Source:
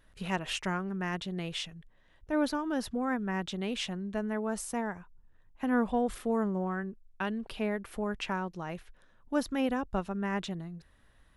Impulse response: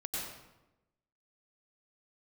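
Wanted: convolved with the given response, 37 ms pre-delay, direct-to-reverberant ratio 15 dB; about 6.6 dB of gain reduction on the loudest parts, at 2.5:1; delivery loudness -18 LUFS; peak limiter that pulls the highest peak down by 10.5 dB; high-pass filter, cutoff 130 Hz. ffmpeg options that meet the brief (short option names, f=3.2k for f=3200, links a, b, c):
-filter_complex "[0:a]highpass=130,acompressor=threshold=-34dB:ratio=2.5,alimiter=level_in=8dB:limit=-24dB:level=0:latency=1,volume=-8dB,asplit=2[a][b];[1:a]atrim=start_sample=2205,adelay=37[c];[b][c]afir=irnorm=-1:irlink=0,volume=-17.5dB[d];[a][d]amix=inputs=2:normalize=0,volume=23dB"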